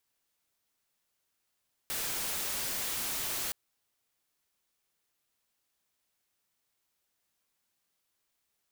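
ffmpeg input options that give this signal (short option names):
-f lavfi -i "anoisesrc=c=white:a=0.0326:d=1.62:r=44100:seed=1"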